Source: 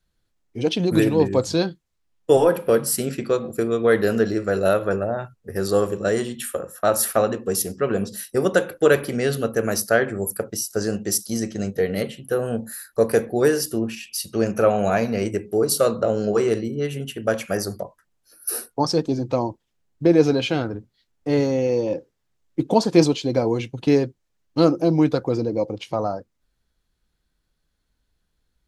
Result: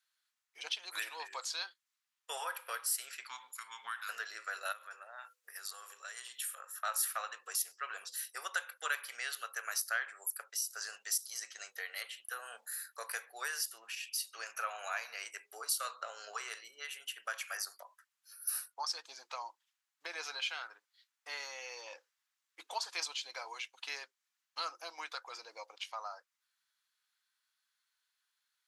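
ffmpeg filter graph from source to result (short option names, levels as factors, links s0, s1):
-filter_complex "[0:a]asettb=1/sr,asplit=3[s0][s1][s2];[s0]atrim=end=3.274[s3];[s1]atrim=start=3.27:end=4.09,asetpts=PTS-STARTPTS,afade=t=in:d=0.004:c=qsin,afade=t=out:st=0.816:d=0.004:c=qsin,acompressor=threshold=0.0794:ratio=2:attack=3.2:release=140:knee=1:detection=peak,afreqshift=-250[s4];[s2]atrim=start=4.086[s5];[s3][s4]acrossfade=d=0.004:c1=hsin:c2=qsin[s6];[s6][s5]acrossfade=d=0.004:c1=qsin:c2=hsin,asettb=1/sr,asplit=3[s7][s8][s9];[s7]atrim=end=4.724[s10];[s8]atrim=start=4.72:end=6.57,asetpts=PTS-STARTPTS,afade=t=in:d=0.004:c=qsin,afade=t=out:st=1.846:d=0.004:c=qsin,bandreject=f=50:t=h:w=6,bandreject=f=100:t=h:w=6,bandreject=f=150:t=h:w=6,bandreject=f=200:t=h:w=6,bandreject=f=250:t=h:w=6,bandreject=f=300:t=h:w=6,bandreject=f=350:t=h:w=6,bandreject=f=400:t=h:w=6,bandreject=f=450:t=h:w=6,bandreject=f=500:t=h:w=6,acompressor=threshold=0.02:ratio=3:attack=3.2:release=140:knee=1:detection=peak,highshelf=f=4500:g=6.5[s11];[s9]atrim=start=6.566[s12];[s10][s11]acrossfade=d=0.004:c1=hsin:c2=qsin[s13];[s13][s12]acrossfade=d=0.004:c1=qsin:c2=hsin,highpass=f=1100:w=0.5412,highpass=f=1100:w=1.3066,acompressor=threshold=0.00631:ratio=1.5,volume=0.794"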